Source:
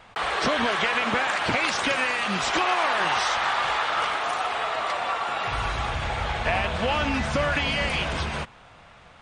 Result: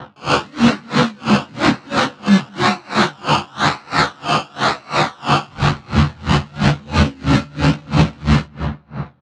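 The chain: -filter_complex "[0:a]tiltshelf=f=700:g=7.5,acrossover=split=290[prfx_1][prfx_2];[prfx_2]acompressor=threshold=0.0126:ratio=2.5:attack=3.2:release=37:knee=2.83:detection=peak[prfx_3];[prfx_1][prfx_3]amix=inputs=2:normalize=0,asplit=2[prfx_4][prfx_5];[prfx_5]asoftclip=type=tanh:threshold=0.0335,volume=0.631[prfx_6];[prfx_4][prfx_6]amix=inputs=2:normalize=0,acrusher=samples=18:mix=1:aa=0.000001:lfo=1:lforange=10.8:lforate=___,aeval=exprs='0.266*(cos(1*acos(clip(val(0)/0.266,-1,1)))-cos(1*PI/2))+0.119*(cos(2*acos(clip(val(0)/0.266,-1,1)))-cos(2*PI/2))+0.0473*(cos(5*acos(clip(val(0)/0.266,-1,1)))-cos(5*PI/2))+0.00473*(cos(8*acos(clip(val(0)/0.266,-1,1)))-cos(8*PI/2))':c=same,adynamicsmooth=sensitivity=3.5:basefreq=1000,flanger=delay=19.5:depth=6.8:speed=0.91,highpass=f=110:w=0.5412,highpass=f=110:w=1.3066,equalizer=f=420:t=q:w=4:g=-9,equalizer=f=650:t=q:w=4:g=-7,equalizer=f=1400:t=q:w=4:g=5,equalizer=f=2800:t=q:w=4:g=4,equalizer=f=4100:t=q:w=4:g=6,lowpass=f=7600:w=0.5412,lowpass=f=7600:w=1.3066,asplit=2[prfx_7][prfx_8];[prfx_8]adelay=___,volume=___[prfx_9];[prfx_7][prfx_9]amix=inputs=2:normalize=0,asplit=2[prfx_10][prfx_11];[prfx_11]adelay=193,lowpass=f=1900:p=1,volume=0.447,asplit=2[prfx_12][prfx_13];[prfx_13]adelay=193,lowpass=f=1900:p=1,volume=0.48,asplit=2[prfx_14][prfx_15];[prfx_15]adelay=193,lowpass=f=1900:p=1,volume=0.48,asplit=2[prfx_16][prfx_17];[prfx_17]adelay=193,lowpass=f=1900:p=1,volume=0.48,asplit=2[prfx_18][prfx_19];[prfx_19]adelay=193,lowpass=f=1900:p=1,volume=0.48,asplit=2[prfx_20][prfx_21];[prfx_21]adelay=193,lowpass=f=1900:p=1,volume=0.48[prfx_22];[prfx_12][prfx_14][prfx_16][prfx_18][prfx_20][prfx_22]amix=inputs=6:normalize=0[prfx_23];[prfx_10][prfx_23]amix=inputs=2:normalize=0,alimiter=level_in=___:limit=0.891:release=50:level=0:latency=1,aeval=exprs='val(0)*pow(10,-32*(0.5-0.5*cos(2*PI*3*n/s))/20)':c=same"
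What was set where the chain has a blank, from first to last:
0.98, 14, 0.708, 7.5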